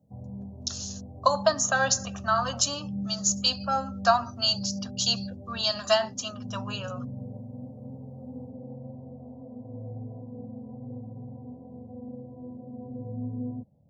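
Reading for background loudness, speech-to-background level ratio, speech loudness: -39.5 LUFS, 13.0 dB, -26.5 LUFS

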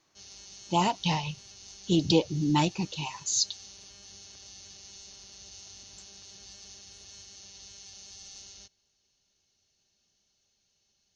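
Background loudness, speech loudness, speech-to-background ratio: -46.5 LUFS, -28.0 LUFS, 18.5 dB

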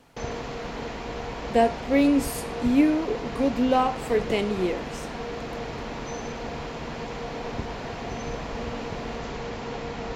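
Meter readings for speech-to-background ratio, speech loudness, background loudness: 9.5 dB, -24.5 LUFS, -34.0 LUFS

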